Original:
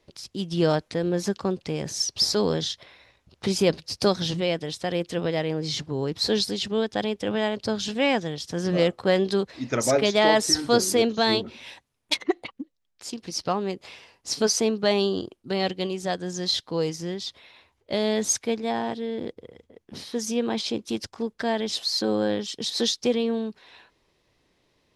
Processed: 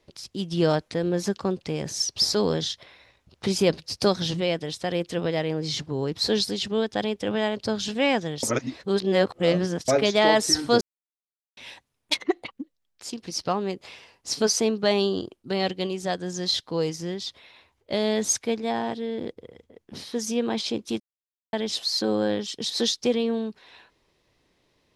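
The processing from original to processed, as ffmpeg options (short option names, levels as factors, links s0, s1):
-filter_complex "[0:a]asplit=7[s0][s1][s2][s3][s4][s5][s6];[s0]atrim=end=8.432[s7];[s1]atrim=start=8.428:end=9.882,asetpts=PTS-STARTPTS,areverse[s8];[s2]atrim=start=9.878:end=10.81,asetpts=PTS-STARTPTS,afade=t=out:st=0.928:d=0.004:c=hsin[s9];[s3]atrim=start=10.81:end=11.57,asetpts=PTS-STARTPTS,volume=0[s10];[s4]atrim=start=11.57:end=21,asetpts=PTS-STARTPTS,afade=t=in:d=0.004:c=hsin,afade=t=out:st=9.426:d=0.004:c=hsin[s11];[s5]atrim=start=21:end=21.53,asetpts=PTS-STARTPTS,volume=0[s12];[s6]atrim=start=21.53,asetpts=PTS-STARTPTS,afade=t=in:d=0.004:c=hsin[s13];[s7][s8]acrossfade=d=0.004:c1=hsin:c2=hsin[s14];[s9][s10][s11][s12][s13]concat=n=5:v=0:a=1[s15];[s14][s15]acrossfade=d=0.004:c1=hsin:c2=hsin"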